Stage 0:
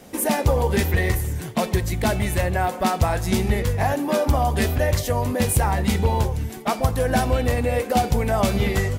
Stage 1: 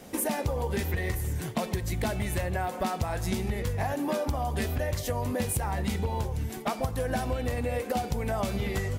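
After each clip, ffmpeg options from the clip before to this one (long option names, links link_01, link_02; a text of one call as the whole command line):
ffmpeg -i in.wav -af "acompressor=threshold=-24dB:ratio=6,volume=-2dB" out.wav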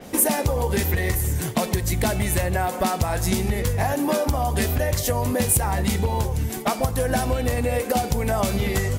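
ffmpeg -i in.wav -af "adynamicequalizer=threshold=0.00282:dfrequency=5300:dqfactor=0.7:tfrequency=5300:tqfactor=0.7:attack=5:release=100:ratio=0.375:range=3:mode=boostabove:tftype=highshelf,volume=7dB" out.wav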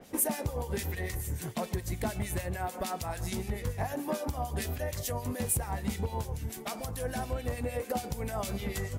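ffmpeg -i in.wav -filter_complex "[0:a]acrossover=split=1800[link_01][link_02];[link_01]aeval=exprs='val(0)*(1-0.7/2+0.7/2*cos(2*PI*6.8*n/s))':channel_layout=same[link_03];[link_02]aeval=exprs='val(0)*(1-0.7/2-0.7/2*cos(2*PI*6.8*n/s))':channel_layout=same[link_04];[link_03][link_04]amix=inputs=2:normalize=0,volume=-8.5dB" out.wav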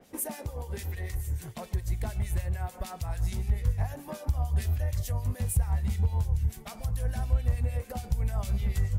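ffmpeg -i in.wav -af "asubboost=boost=10.5:cutoff=94,volume=-5dB" out.wav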